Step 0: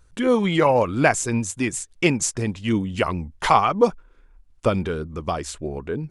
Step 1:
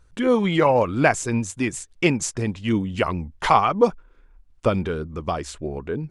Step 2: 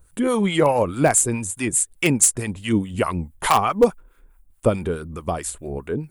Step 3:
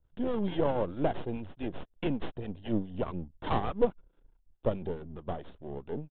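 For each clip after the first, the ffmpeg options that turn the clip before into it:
-af "highshelf=f=7.2k:g=-7.5"
-filter_complex "[0:a]aexciter=amount=9.8:drive=4.5:freq=8k,asplit=2[a][b];[b]aeval=exprs='(mod(2.11*val(0)+1,2)-1)/2.11':c=same,volume=-10dB[c];[a][c]amix=inputs=2:normalize=0,acrossover=split=820[d][e];[d]aeval=exprs='val(0)*(1-0.7/2+0.7/2*cos(2*PI*4.7*n/s))':c=same[f];[e]aeval=exprs='val(0)*(1-0.7/2-0.7/2*cos(2*PI*4.7*n/s))':c=same[g];[f][g]amix=inputs=2:normalize=0,volume=1dB"
-filter_complex "[0:a]aeval=exprs='if(lt(val(0),0),0.251*val(0),val(0))':c=same,acrossover=split=370|1100|3100[a][b][c][d];[c]acrusher=samples=36:mix=1:aa=0.000001[e];[a][b][e][d]amix=inputs=4:normalize=0,aresample=8000,aresample=44100,volume=-7dB"

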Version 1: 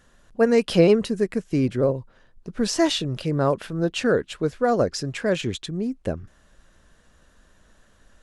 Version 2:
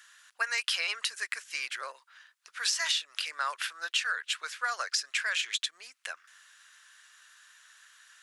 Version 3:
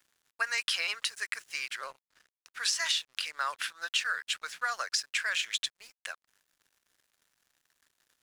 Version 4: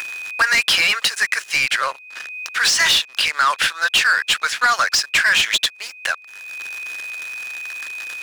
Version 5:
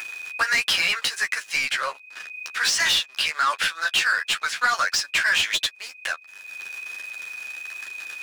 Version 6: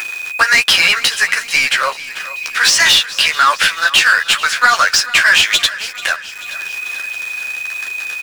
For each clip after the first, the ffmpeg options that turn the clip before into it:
-af "highpass=f=1.4k:w=0.5412,highpass=f=1.4k:w=1.3066,acompressor=threshold=-34dB:ratio=6,volume=7.5dB"
-af "aeval=exprs='sgn(val(0))*max(abs(val(0))-0.00237,0)':c=same"
-filter_complex "[0:a]aeval=exprs='val(0)+0.000631*sin(2*PI*2500*n/s)':c=same,acompressor=mode=upward:threshold=-39dB:ratio=2.5,asplit=2[a][b];[b]highpass=f=720:p=1,volume=22dB,asoftclip=type=tanh:threshold=-13dB[c];[a][c]amix=inputs=2:normalize=0,lowpass=f=5.6k:p=1,volume=-6dB,volume=6.5dB"
-af "flanger=delay=9.7:depth=4:regen=13:speed=1.4:shape=triangular,volume=-2dB"
-filter_complex "[0:a]asplit=2[a][b];[b]acrusher=bits=6:mix=0:aa=0.000001,volume=-3.5dB[c];[a][c]amix=inputs=2:normalize=0,aecho=1:1:438|876|1314|1752|2190:0.15|0.0868|0.0503|0.0292|0.0169,volume=6dB"

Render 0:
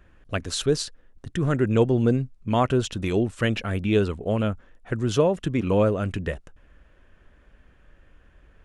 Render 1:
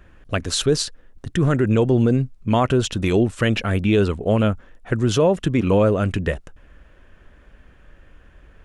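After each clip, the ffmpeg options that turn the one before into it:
-af "alimiter=level_in=13.5dB:limit=-1dB:release=50:level=0:latency=1,volume=-7.5dB"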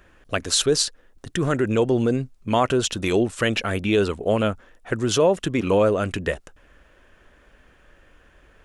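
-af "bass=f=250:g=-8,treble=f=4k:g=4"

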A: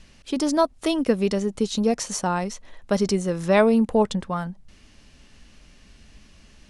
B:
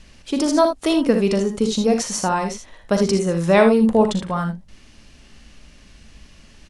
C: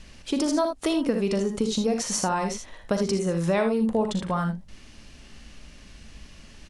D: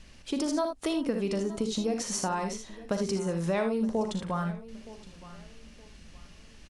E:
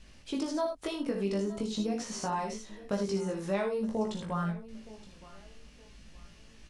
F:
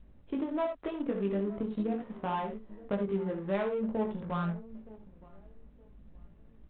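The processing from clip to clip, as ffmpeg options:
-af "aecho=1:1:41|59|77:0.266|0.355|0.355,volume=3dB"
-af "acompressor=threshold=-23dB:ratio=3"
-af "aecho=1:1:919|1838|2757:0.126|0.0378|0.0113,volume=-5dB"
-filter_complex "[0:a]acrossover=split=5900[a][b];[b]acompressor=threshold=-46dB:ratio=4:attack=1:release=60[c];[a][c]amix=inputs=2:normalize=0,flanger=delay=18:depth=2.5:speed=0.45"
-af "adynamicsmooth=sensitivity=5:basefreq=620" -ar 8000 -c:a adpcm_g726 -b:a 40k

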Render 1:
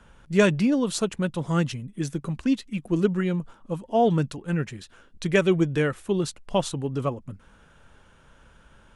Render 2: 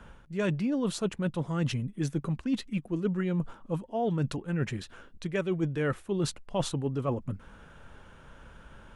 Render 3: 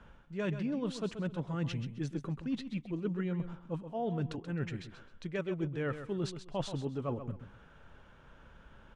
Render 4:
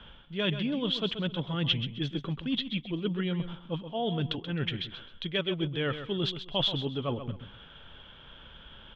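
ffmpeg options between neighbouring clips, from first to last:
-af "equalizer=f=8k:w=0.4:g=-6,areverse,acompressor=threshold=-30dB:ratio=10,areverse,volume=4dB"
-af "lowpass=5.6k,aecho=1:1:131|262|393:0.299|0.0776|0.0202,volume=-6dB"
-af "lowpass=f=3.3k:t=q:w=14,volume=3.5dB"

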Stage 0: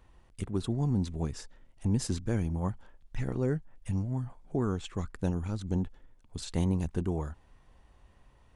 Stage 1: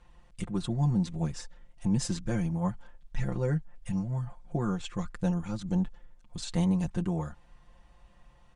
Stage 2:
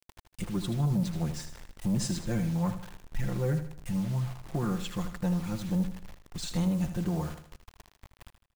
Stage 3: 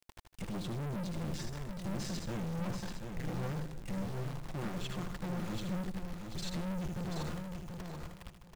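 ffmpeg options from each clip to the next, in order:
-af "lowpass=f=9.5k:w=0.5412,lowpass=f=9.5k:w=1.3066,equalizer=f=370:t=o:w=0.32:g=-8.5,aecho=1:1:5.7:0.85"
-filter_complex "[0:a]acrusher=bits=7:mix=0:aa=0.000001,asoftclip=type=tanh:threshold=-22.5dB,asplit=2[a][b];[b]aecho=0:1:78|156|234|312:0.316|0.126|0.0506|0.0202[c];[a][c]amix=inputs=2:normalize=0,volume=1dB"
-filter_complex "[0:a]aeval=exprs='(tanh(100*val(0)+0.35)-tanh(0.35))/100':c=same,acrossover=split=6400[a][b];[b]acompressor=threshold=-58dB:ratio=4:attack=1:release=60[c];[a][c]amix=inputs=2:normalize=0,aecho=1:1:734|1468|2202:0.501|0.105|0.0221,volume=3.5dB"

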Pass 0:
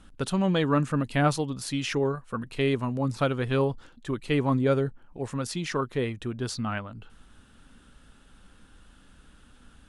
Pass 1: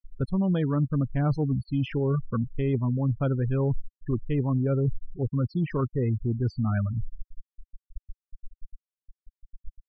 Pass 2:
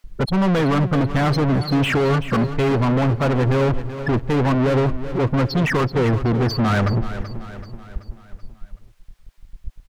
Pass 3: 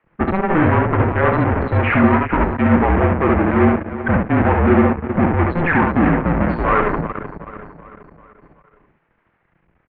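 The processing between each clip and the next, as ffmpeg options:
-af "afftfilt=real='re*gte(hypot(re,im),0.0501)':imag='im*gte(hypot(re,im),0.0501)':win_size=1024:overlap=0.75,aemphasis=mode=reproduction:type=riaa,areverse,acompressor=threshold=-27dB:ratio=6,areverse,volume=4dB"
-filter_complex "[0:a]alimiter=limit=-20dB:level=0:latency=1:release=45,asplit=2[a][b];[b]highpass=f=720:p=1,volume=35dB,asoftclip=type=tanh:threshold=-20dB[c];[a][c]amix=inputs=2:normalize=0,lowpass=f=2.1k:p=1,volume=-6dB,aecho=1:1:381|762|1143|1524|1905:0.237|0.121|0.0617|0.0315|0.016,volume=7.5dB"
-af "aecho=1:1:29|70:0.299|0.708,aeval=exprs='0.531*(cos(1*acos(clip(val(0)/0.531,-1,1)))-cos(1*PI/2))+0.0668*(cos(8*acos(clip(val(0)/0.531,-1,1)))-cos(8*PI/2))':c=same,highpass=f=270:t=q:w=0.5412,highpass=f=270:t=q:w=1.307,lowpass=f=2.4k:t=q:w=0.5176,lowpass=f=2.4k:t=q:w=0.7071,lowpass=f=2.4k:t=q:w=1.932,afreqshift=-180,volume=4.5dB"

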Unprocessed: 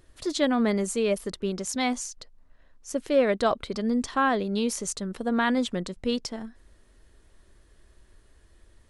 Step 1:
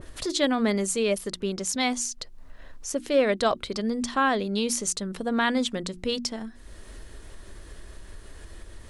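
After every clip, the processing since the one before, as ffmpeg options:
-af "bandreject=f=60:t=h:w=6,bandreject=f=120:t=h:w=6,bandreject=f=180:t=h:w=6,bandreject=f=240:t=h:w=6,bandreject=f=300:t=h:w=6,bandreject=f=360:t=h:w=6,acompressor=mode=upward:threshold=-28dB:ratio=2.5,adynamicequalizer=threshold=0.01:dfrequency=2100:dqfactor=0.7:tfrequency=2100:tqfactor=0.7:attack=5:release=100:ratio=0.375:range=2.5:mode=boostabove:tftype=highshelf"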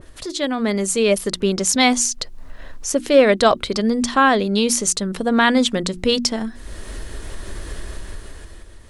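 -af "dynaudnorm=f=160:g=11:m=13.5dB"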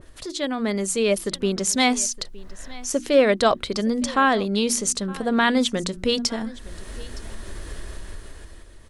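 -af "aecho=1:1:915:0.0891,volume=-4dB"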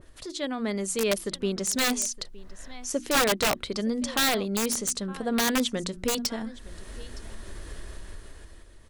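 -af "aeval=exprs='(mod(3.76*val(0)+1,2)-1)/3.76':c=same,volume=-5dB"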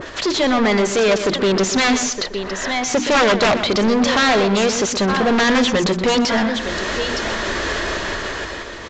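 -filter_complex "[0:a]asplit=2[a][b];[b]highpass=f=720:p=1,volume=31dB,asoftclip=type=tanh:threshold=-16.5dB[c];[a][c]amix=inputs=2:normalize=0,lowpass=f=2.9k:p=1,volume=-6dB,asplit=2[d][e];[e]adelay=123,lowpass=f=3.4k:p=1,volume=-9.5dB,asplit=2[f][g];[g]adelay=123,lowpass=f=3.4k:p=1,volume=0.28,asplit=2[h][i];[i]adelay=123,lowpass=f=3.4k:p=1,volume=0.28[j];[d][f][h][j]amix=inputs=4:normalize=0,aresample=16000,aresample=44100,volume=7dB"

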